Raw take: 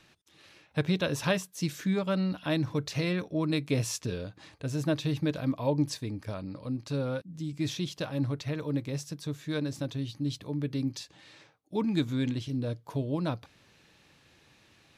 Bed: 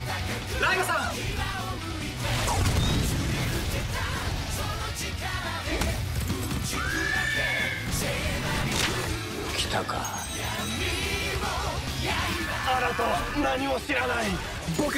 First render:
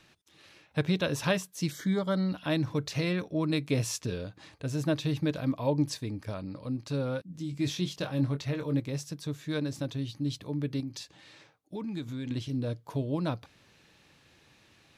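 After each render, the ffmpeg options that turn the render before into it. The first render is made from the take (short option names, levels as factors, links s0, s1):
-filter_complex "[0:a]asettb=1/sr,asplit=3[s0][s1][s2];[s0]atrim=end=1.714[s3];[s1]atrim=start=1.71:end=2.29,asetpts=PTS-STARTPTS,afade=t=in:d=0.004:c=qsin,afade=t=out:st=0.576:d=0.004:c=qsin,asuperstop=centerf=2600:order=12:qfactor=4[s4];[s2]atrim=start=2.286[s5];[s3][s4]acrossfade=d=0.004:c1=hsin:c2=qsin[s6];[s6][s5]acrossfade=d=0.004:c1=qsin:c2=hsin,asettb=1/sr,asplit=3[s7][s8][s9];[s7]atrim=end=7.284[s10];[s8]atrim=start=7.28:end=8.8,asetpts=PTS-STARTPTS,afade=t=in:d=0.004:c=qsin,afade=t=out:st=1.516:d=0.004:c=qsin,asplit=2[s11][s12];[s12]adelay=22,volume=0.422[s13];[s11][s13]amix=inputs=2:normalize=0,atrim=end_sample=67032[s14];[s9]atrim=start=8.796[s15];[s10][s14]acrossfade=d=0.004:c1=hsin:c2=qsin[s16];[s16][s15]acrossfade=d=0.004:c1=qsin:c2=hsin,asettb=1/sr,asplit=3[s17][s18][s19];[s17]atrim=end=10.804[s20];[s18]atrim=start=10.8:end=12.31,asetpts=PTS-STARTPTS,afade=t=in:d=0.004:c=qsin,afade=t=out:st=1.506:d=0.004:c=qsin,acompressor=threshold=0.0158:ratio=2.5:attack=3.2:release=140:knee=1:detection=peak[s21];[s19]atrim=start=12.306[s22];[s20][s21]acrossfade=d=0.004:c1=hsin:c2=qsin[s23];[s23][s22]acrossfade=d=0.004:c1=qsin:c2=hsin"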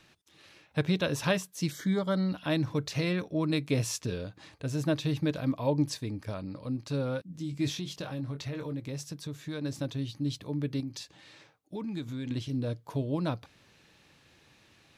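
-filter_complex "[0:a]asplit=3[s0][s1][s2];[s0]afade=t=out:st=7.74:d=0.02[s3];[s1]acompressor=threshold=0.0251:ratio=4:attack=3.2:release=140:knee=1:detection=peak,afade=t=in:st=7.74:d=0.02,afade=t=out:st=9.63:d=0.02[s4];[s2]afade=t=in:st=9.63:d=0.02[s5];[s3][s4][s5]amix=inputs=3:normalize=0"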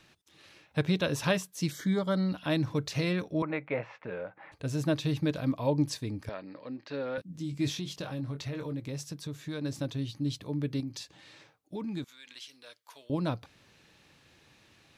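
-filter_complex "[0:a]asettb=1/sr,asplit=3[s0][s1][s2];[s0]atrim=end=3.424[s3];[s1]atrim=start=3.42:end=4.52,asetpts=PTS-STARTPTS,afade=t=in:d=0.004:c=qsin,afade=t=out:st=1.096:d=0.004:c=qsin,highpass=260,equalizer=f=270:t=q:w=4:g=-8,equalizer=f=390:t=q:w=4:g=-6,equalizer=f=550:t=q:w=4:g=6,equalizer=f=830:t=q:w=4:g=9,equalizer=f=1400:t=q:w=4:g=5,equalizer=f=2100:t=q:w=4:g=7,lowpass=f=2200:w=0.5412,lowpass=f=2200:w=1.3066[s4];[s2]atrim=start=4.516[s5];[s3][s4]acrossfade=d=0.004:c1=hsin:c2=qsin[s6];[s6][s5]acrossfade=d=0.004:c1=qsin:c2=hsin,asettb=1/sr,asplit=3[s7][s8][s9];[s7]atrim=end=6.294[s10];[s8]atrim=start=6.29:end=7.18,asetpts=PTS-STARTPTS,afade=t=in:d=0.004:c=qsin,afade=t=out:st=0.886:d=0.004:c=qsin,highpass=330,equalizer=f=1200:t=q:w=4:g=-3,equalizer=f=1800:t=q:w=4:g=10,equalizer=f=3600:t=q:w=4:g=-3,lowpass=f=4400:w=0.5412,lowpass=f=4400:w=1.3066[s11];[s9]atrim=start=7.176[s12];[s10][s11]acrossfade=d=0.004:c1=hsin:c2=qsin[s13];[s13][s12]acrossfade=d=0.004:c1=qsin:c2=hsin,asettb=1/sr,asplit=3[s14][s15][s16];[s14]atrim=end=12.044[s17];[s15]atrim=start=12.04:end=13.1,asetpts=PTS-STARTPTS,afade=t=in:d=0.004:c=qsin,afade=t=out:st=1.056:d=0.004:c=qsin,highpass=1500[s18];[s16]atrim=start=13.096[s19];[s17][s18]acrossfade=d=0.004:c1=hsin:c2=qsin[s20];[s20][s19]acrossfade=d=0.004:c1=qsin:c2=hsin"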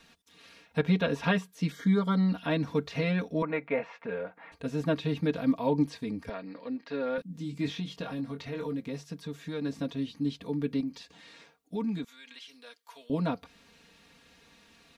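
-filter_complex "[0:a]acrossover=split=3400[s0][s1];[s1]acompressor=threshold=0.00126:ratio=4:attack=1:release=60[s2];[s0][s2]amix=inputs=2:normalize=0,aecho=1:1:4.3:0.88"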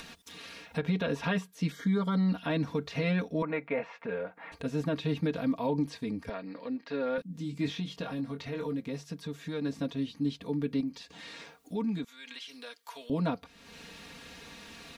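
-af "acompressor=mode=upward:threshold=0.0141:ratio=2.5,alimiter=limit=0.0891:level=0:latency=1:release=37"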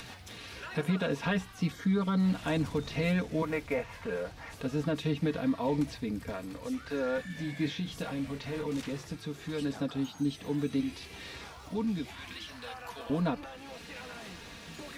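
-filter_complex "[1:a]volume=0.1[s0];[0:a][s0]amix=inputs=2:normalize=0"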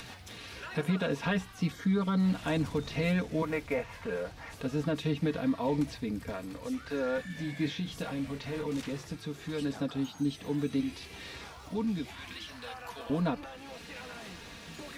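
-af anull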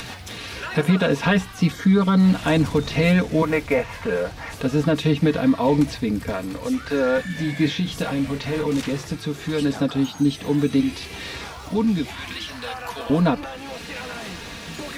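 -af "volume=3.76"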